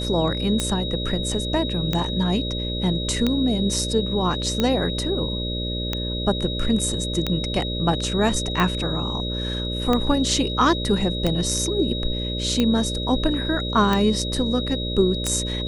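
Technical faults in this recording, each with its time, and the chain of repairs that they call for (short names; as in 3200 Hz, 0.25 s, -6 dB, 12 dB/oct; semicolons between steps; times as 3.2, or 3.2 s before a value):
buzz 60 Hz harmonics 10 -28 dBFS
tick 45 rpm -8 dBFS
tone 3800 Hz -29 dBFS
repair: de-click; notch 3800 Hz, Q 30; de-hum 60 Hz, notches 10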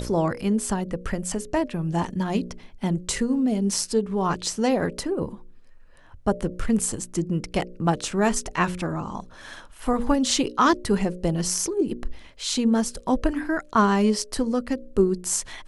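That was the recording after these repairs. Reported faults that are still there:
none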